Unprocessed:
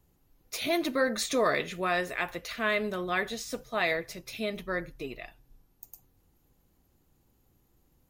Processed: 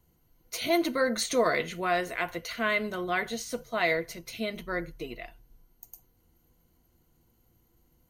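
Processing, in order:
EQ curve with evenly spaced ripples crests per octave 1.9, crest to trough 8 dB

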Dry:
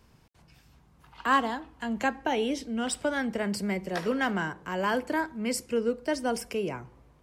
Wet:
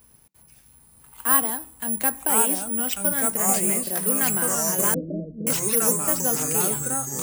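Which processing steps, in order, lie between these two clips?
bad sample-rate conversion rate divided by 4×, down none, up zero stuff
on a send at −20 dB: convolution reverb RT60 0.15 s, pre-delay 3 ms
on the sum: delay with pitch and tempo change per echo 798 ms, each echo −3 semitones, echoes 3
0:04.94–0:05.47: Butterworth low-pass 640 Hz 96 dB per octave
level −1.5 dB

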